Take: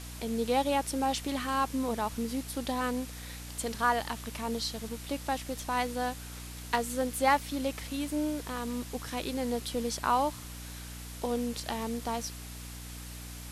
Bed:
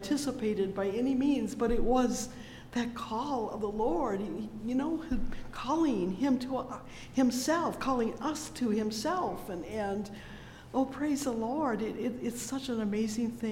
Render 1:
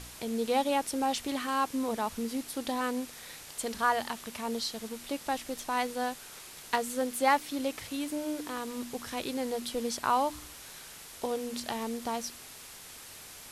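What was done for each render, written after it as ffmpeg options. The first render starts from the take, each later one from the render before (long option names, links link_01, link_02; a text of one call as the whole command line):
ffmpeg -i in.wav -af "bandreject=frequency=60:width_type=h:width=4,bandreject=frequency=120:width_type=h:width=4,bandreject=frequency=180:width_type=h:width=4,bandreject=frequency=240:width_type=h:width=4,bandreject=frequency=300:width_type=h:width=4" out.wav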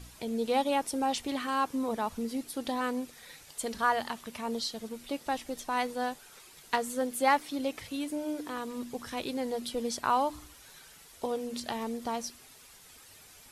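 ffmpeg -i in.wav -af "afftdn=noise_reduction=9:noise_floor=-48" out.wav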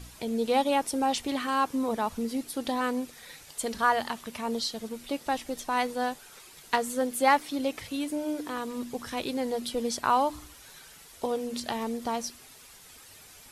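ffmpeg -i in.wav -af "volume=3dB" out.wav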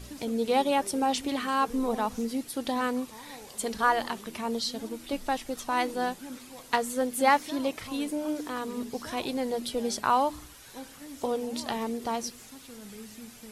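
ffmpeg -i in.wav -i bed.wav -filter_complex "[1:a]volume=-14dB[link_01];[0:a][link_01]amix=inputs=2:normalize=0" out.wav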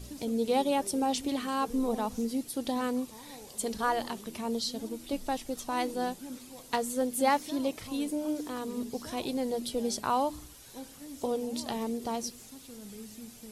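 ffmpeg -i in.wav -af "equalizer=frequency=1600:width_type=o:width=2:gain=-7.5" out.wav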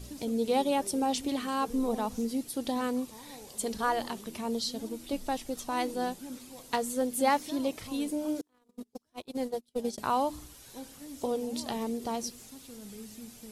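ffmpeg -i in.wav -filter_complex "[0:a]asettb=1/sr,asplit=3[link_01][link_02][link_03];[link_01]atrim=end=8.414[link_04];[link_02]atrim=start=8.41:end=9.98,asetpts=PTS-STARTPTS,afade=type=in:duration=0.004:curve=qsin,afade=type=out:start_time=1.566:duration=0.004:curve=qsin,agate=range=-38dB:threshold=-32dB:ratio=16:release=100:detection=peak[link_05];[link_03]atrim=start=9.976[link_06];[link_04][link_05]acrossfade=duration=0.004:curve1=hsin:curve2=qsin[link_07];[link_07][link_06]acrossfade=duration=0.004:curve1=qsin:curve2=hsin" out.wav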